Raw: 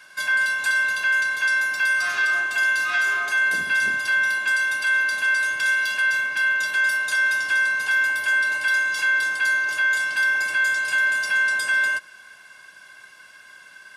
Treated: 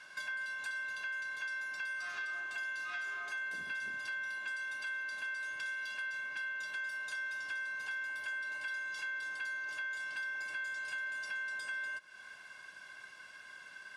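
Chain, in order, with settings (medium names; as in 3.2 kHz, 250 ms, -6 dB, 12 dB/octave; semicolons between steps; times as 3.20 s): treble shelf 9.9 kHz +9 dB; compression 4:1, threshold -35 dBFS, peak gain reduction 14.5 dB; distance through air 71 m; trim -5 dB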